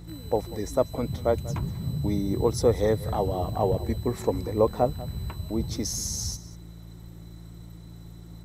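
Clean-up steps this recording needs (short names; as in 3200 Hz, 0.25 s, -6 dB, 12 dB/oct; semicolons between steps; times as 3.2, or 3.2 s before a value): de-hum 56.5 Hz, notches 3; inverse comb 0.191 s -18 dB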